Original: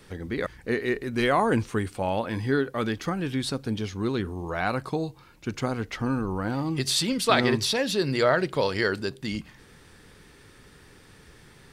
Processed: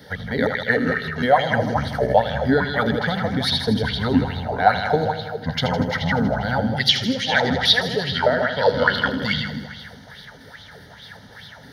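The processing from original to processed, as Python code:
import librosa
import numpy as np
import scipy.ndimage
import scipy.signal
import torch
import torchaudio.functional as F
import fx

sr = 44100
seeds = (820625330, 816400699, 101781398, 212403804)

y = fx.pitch_trill(x, sr, semitones=-6.5, every_ms=153)
y = scipy.signal.sosfilt(scipy.signal.butter(2, 87.0, 'highpass', fs=sr, output='sos'), y)
y = fx.fixed_phaser(y, sr, hz=1700.0, stages=8)
y = fx.echo_heads(y, sr, ms=80, heads='first and second', feedback_pct=56, wet_db=-9)
y = fx.rider(y, sr, range_db=4, speed_s=0.5)
y = fx.bell_lfo(y, sr, hz=2.4, low_hz=260.0, high_hz=3800.0, db=15)
y = F.gain(torch.from_numpy(y), 5.0).numpy()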